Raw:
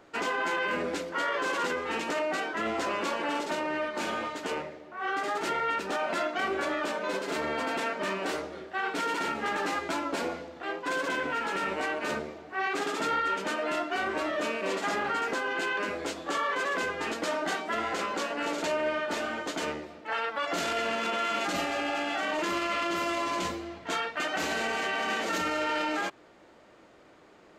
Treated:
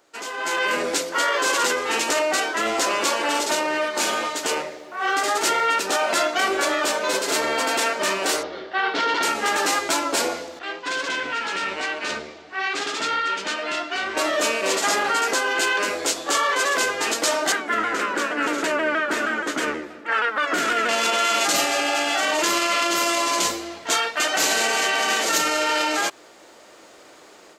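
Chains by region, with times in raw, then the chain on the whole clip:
8.43–9.23 LPF 4300 Hz 24 dB/oct + notch 2500 Hz, Q 14
10.59–14.17 LPF 4000 Hz + bell 580 Hz -8 dB 2.9 oct
17.52–20.89 EQ curve 160 Hz 0 dB, 260 Hz +5 dB, 780 Hz -7 dB, 1500 Hz +4 dB, 4500 Hz -12 dB + shaped vibrato saw down 6.3 Hz, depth 100 cents
whole clip: tone controls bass -11 dB, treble +13 dB; AGC gain up to 14 dB; gain -5 dB

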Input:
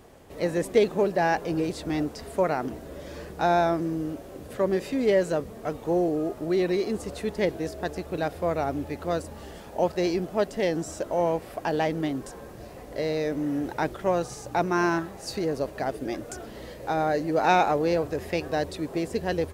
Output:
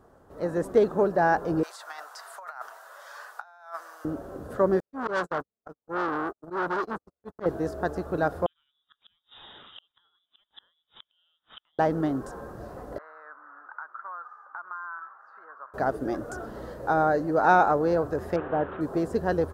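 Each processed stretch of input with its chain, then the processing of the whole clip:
1.63–4.05 Bessel high-pass 1300 Hz, order 6 + negative-ratio compressor -41 dBFS, ratio -0.5
4.8–7.46 gate -29 dBFS, range -58 dB + auto swell 0.12 s + core saturation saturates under 2900 Hz
8.46–11.79 flipped gate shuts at -23 dBFS, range -38 dB + inverted band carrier 3700 Hz
12.98–15.74 Butterworth band-pass 1300 Hz, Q 2.5 + compressor 5:1, threshold -40 dBFS
18.36–18.81 delta modulation 16 kbps, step -34.5 dBFS + low shelf 120 Hz -9.5 dB
whole clip: AGC gain up to 7.5 dB; resonant high shelf 1800 Hz -8 dB, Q 3; gain -6 dB

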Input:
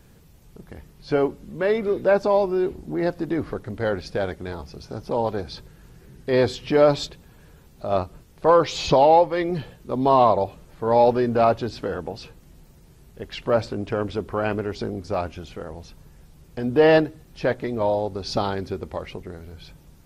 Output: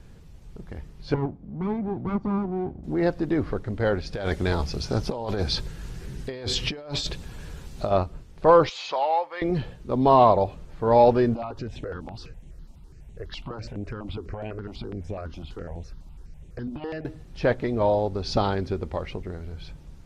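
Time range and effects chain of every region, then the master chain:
1.14–2.84 minimum comb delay 0.88 ms + band-pass 200 Hz, Q 0.76
4.13–7.91 high shelf 2500 Hz +8 dB + negative-ratio compressor -30 dBFS
8.69–9.42 HPF 1100 Hz + high shelf 2700 Hz -9.5 dB
11.34–17.05 compressor 4:1, threshold -29 dBFS + step phaser 12 Hz 440–4800 Hz
whole clip: Bessel low-pass 6700 Hz, order 2; low shelf 77 Hz +10 dB

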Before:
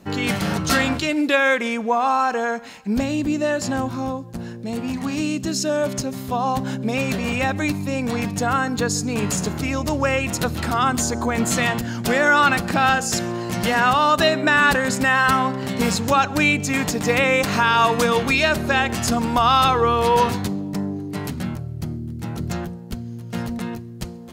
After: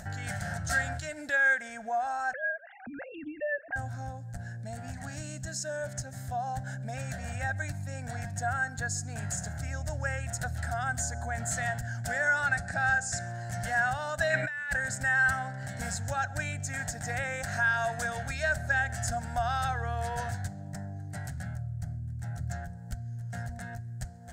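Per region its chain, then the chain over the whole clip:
2.33–3.76 sine-wave speech + upward compressor, threshold -35 dBFS
12.47–13.27 LPF 10000 Hz 24 dB/oct + bell 990 Hz -3 dB 0.39 oct + notch 3100 Hz, Q 7.9
14.3–14.73 bell 2300 Hz +13 dB 0.89 oct + negative-ratio compressor -18 dBFS, ratio -0.5
whole clip: EQ curve 120 Hz 0 dB, 210 Hz -17 dB, 400 Hz -27 dB, 710 Hz -1 dB, 1100 Hz -24 dB, 1600 Hz +3 dB, 2500 Hz -19 dB, 4100 Hz -14 dB, 8100 Hz -1 dB, 11000 Hz -12 dB; upward compressor, threshold -28 dBFS; gain -5 dB

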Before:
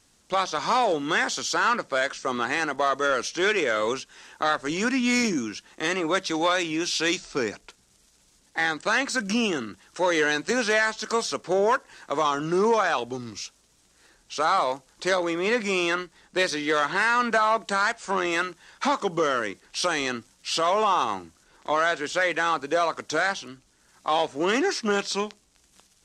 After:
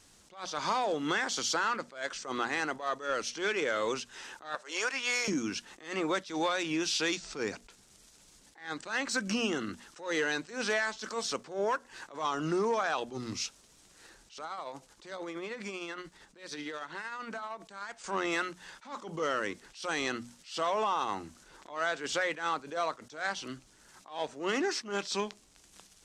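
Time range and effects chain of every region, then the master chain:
4.55–5.28 HPF 480 Hz 24 dB/oct + mismatched tape noise reduction decoder only
14.38–18.04 tremolo 13 Hz, depth 52% + compressor 16:1, threshold -37 dBFS
whole clip: notches 60/120/180/240 Hz; compressor 3:1, threshold -32 dBFS; attack slew limiter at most 150 dB/s; gain +2 dB

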